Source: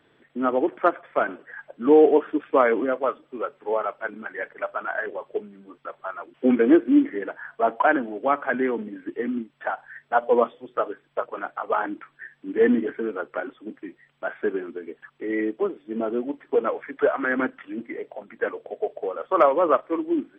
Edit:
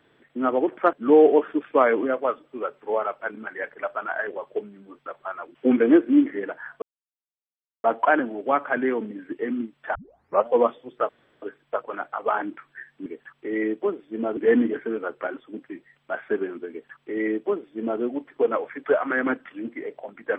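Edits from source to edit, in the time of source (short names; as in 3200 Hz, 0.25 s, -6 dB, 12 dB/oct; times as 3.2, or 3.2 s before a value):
0.93–1.72 cut
7.61 insert silence 1.02 s
9.72 tape start 0.52 s
10.86 insert room tone 0.33 s
14.83–16.14 copy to 12.5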